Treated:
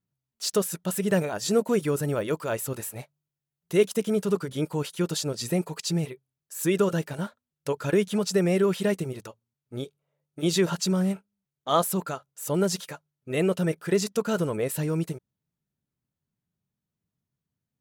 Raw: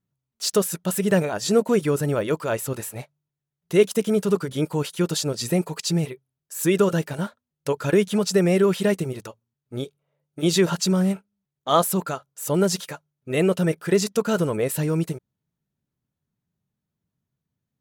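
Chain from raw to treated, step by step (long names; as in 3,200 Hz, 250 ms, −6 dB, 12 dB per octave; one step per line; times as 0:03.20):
0:01.12–0:03.85: high-shelf EQ 10,000 Hz +5 dB
level −4 dB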